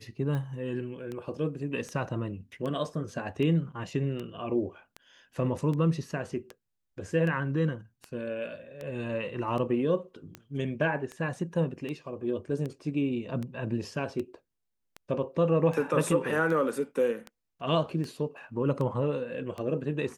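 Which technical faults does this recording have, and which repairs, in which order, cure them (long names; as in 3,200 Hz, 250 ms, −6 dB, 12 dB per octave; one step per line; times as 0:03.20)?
scratch tick 78 rpm −24 dBFS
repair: click removal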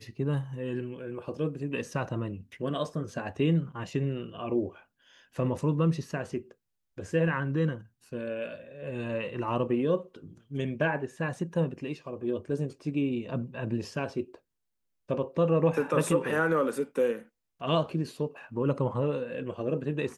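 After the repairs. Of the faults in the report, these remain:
none of them is left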